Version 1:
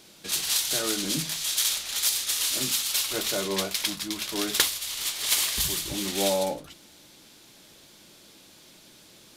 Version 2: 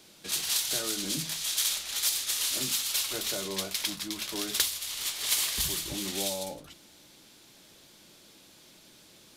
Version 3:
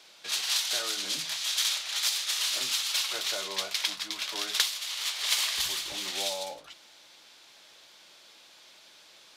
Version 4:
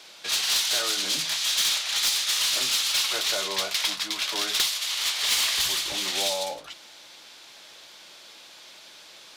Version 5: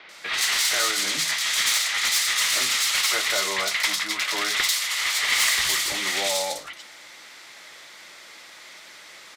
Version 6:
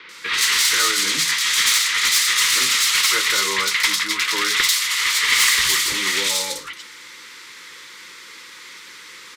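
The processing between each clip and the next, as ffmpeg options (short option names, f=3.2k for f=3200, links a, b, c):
-filter_complex "[0:a]acrossover=split=140|3000[a][b][c];[b]acompressor=threshold=-31dB:ratio=6[d];[a][d][c]amix=inputs=3:normalize=0,volume=-3dB"
-filter_complex "[0:a]acrossover=split=550 6200:gain=0.112 1 0.251[a][b][c];[a][b][c]amix=inputs=3:normalize=0,volume=4dB"
-af "asoftclip=type=tanh:threshold=-24.5dB,volume=7dB"
-filter_complex "[0:a]equalizer=f=1.25k:t=o:w=0.33:g=5,equalizer=f=2k:t=o:w=0.33:g=12,equalizer=f=8k:t=o:w=0.33:g=3,acrossover=split=3500[a][b];[b]adelay=90[c];[a][c]amix=inputs=2:normalize=0,volume=2dB"
-af "asuperstop=centerf=690:order=8:qfactor=1.9,volume=5dB"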